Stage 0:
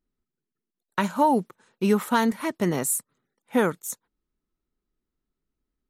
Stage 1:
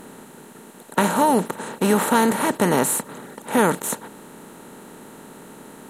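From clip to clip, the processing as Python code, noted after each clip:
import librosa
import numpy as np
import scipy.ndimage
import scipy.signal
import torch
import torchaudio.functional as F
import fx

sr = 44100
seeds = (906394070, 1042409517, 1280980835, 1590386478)

y = fx.bin_compress(x, sr, power=0.4)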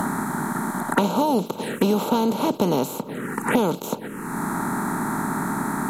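y = fx.env_phaser(x, sr, low_hz=400.0, high_hz=1800.0, full_db=-22.0)
y = fx.band_squash(y, sr, depth_pct=100)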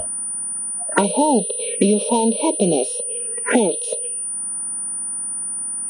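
y = fx.noise_reduce_blind(x, sr, reduce_db=28)
y = fx.pwm(y, sr, carrier_hz=9400.0)
y = y * 10.0 ** (4.5 / 20.0)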